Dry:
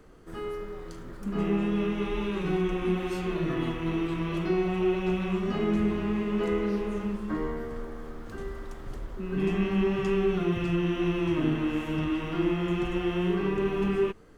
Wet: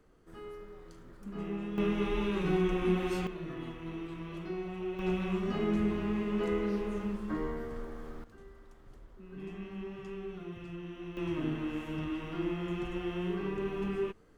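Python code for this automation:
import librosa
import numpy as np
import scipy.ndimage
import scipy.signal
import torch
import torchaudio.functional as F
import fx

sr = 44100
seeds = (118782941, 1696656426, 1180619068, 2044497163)

y = fx.gain(x, sr, db=fx.steps((0.0, -10.5), (1.78, -1.5), (3.27, -11.5), (4.99, -4.0), (8.24, -16.0), (11.17, -7.5)))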